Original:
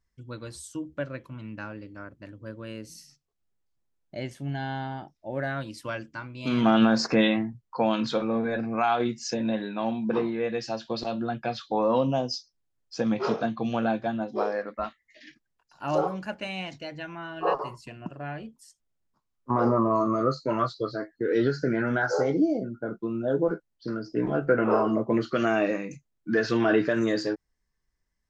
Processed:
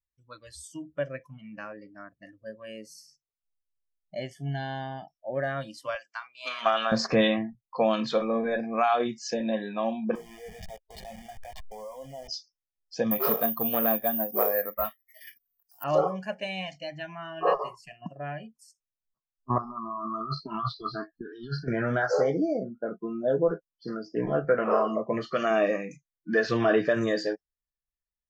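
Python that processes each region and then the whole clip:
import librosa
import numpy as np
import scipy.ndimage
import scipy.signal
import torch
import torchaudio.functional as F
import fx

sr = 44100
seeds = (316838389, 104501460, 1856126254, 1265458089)

y = fx.chain(x, sr, fx.highpass(hz=780.0, slope=12),
    fx.transient(attack_db=5, sustain_db=1), at=(5.95, 6.92))
y = fx.chain(y, sr, fx.delta_hold(step_db=-28.0),
    fx.peak_eq(hz=4800.0, db=-2.5, octaves=0.55),
    fx.level_steps(step_db=20), at=(10.15, 12.28))
y = fx.chain(y, sr, fx.resample_bad(factor=3, down='none', up='zero_stuff'),
    fx.transformer_sat(knee_hz=1800.0), at=(13.11, 15.84))
y = fx.chain(y, sr, fx.over_compress(threshold_db=-30.0, ratio=-1.0),
    fx.fixed_phaser(hz=2000.0, stages=6), at=(19.58, 21.68))
y = fx.chain(y, sr, fx.highpass(hz=100.0, slope=12),
    fx.peak_eq(hz=310.0, db=-5.5, octaves=1.2), at=(24.45, 25.51))
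y = fx.noise_reduce_blind(y, sr, reduce_db=20)
y = fx.high_shelf(y, sr, hz=5300.0, db=-5.0)
y = y + 0.43 * np.pad(y, (int(1.7 * sr / 1000.0), 0))[:len(y)]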